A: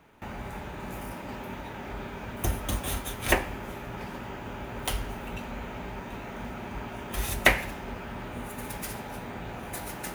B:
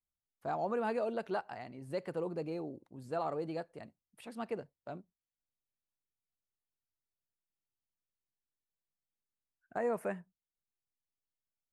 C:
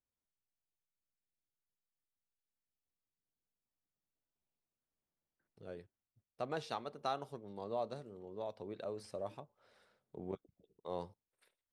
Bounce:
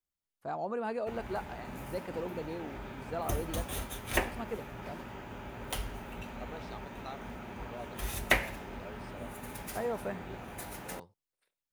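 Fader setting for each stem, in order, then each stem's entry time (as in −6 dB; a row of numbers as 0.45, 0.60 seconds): −6.0, −1.0, −7.0 decibels; 0.85, 0.00, 0.00 seconds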